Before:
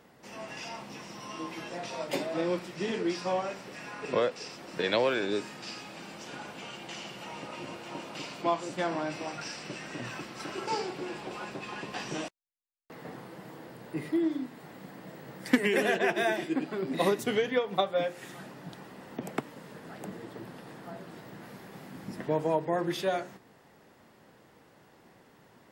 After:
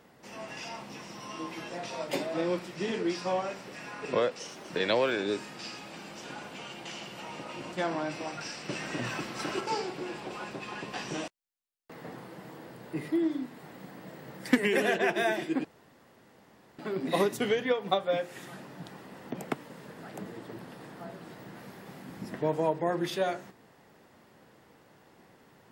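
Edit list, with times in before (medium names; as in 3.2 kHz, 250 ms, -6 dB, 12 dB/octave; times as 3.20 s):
4.39–4.73 s: speed 111%
7.76–8.73 s: delete
9.69–10.61 s: gain +4.5 dB
16.65 s: insert room tone 1.14 s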